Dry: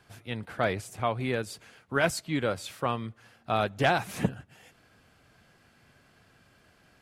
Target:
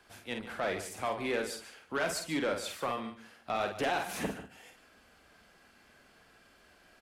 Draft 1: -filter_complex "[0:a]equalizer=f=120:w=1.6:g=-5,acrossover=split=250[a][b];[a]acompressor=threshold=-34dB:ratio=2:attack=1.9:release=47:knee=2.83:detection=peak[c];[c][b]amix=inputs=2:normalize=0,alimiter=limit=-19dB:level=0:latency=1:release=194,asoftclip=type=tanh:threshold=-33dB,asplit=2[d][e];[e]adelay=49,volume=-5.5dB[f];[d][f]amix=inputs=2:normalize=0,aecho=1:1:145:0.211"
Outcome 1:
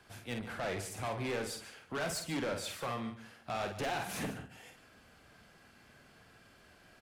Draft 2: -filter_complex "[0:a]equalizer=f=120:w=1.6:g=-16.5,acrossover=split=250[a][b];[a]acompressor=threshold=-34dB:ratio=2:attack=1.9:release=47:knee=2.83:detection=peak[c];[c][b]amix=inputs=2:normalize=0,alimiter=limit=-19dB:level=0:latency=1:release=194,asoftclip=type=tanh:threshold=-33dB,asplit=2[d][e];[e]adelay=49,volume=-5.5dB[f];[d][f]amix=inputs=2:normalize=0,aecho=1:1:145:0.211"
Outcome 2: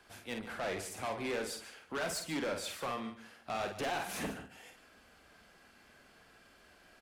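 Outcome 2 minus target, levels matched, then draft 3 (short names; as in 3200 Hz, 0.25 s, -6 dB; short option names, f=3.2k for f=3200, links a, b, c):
soft clip: distortion +7 dB
-filter_complex "[0:a]equalizer=f=120:w=1.6:g=-16.5,acrossover=split=250[a][b];[a]acompressor=threshold=-34dB:ratio=2:attack=1.9:release=47:knee=2.83:detection=peak[c];[c][b]amix=inputs=2:normalize=0,alimiter=limit=-19dB:level=0:latency=1:release=194,asoftclip=type=tanh:threshold=-25dB,asplit=2[d][e];[e]adelay=49,volume=-5.5dB[f];[d][f]amix=inputs=2:normalize=0,aecho=1:1:145:0.211"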